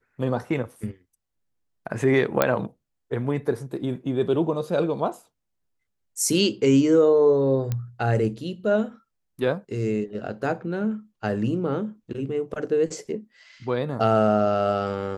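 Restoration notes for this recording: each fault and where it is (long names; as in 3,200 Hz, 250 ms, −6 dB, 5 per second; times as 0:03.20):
0:02.42: click −4 dBFS
0:07.72: click −14 dBFS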